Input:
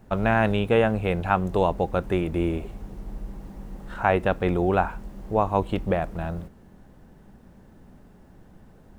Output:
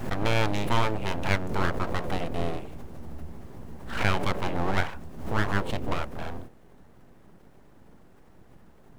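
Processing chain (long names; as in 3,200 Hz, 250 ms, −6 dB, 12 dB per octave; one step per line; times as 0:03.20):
mains-hum notches 60/120/180/240/300/360/420/480/540 Hz
full-wave rectification
background raised ahead of every attack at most 80 dB per second
level −1.5 dB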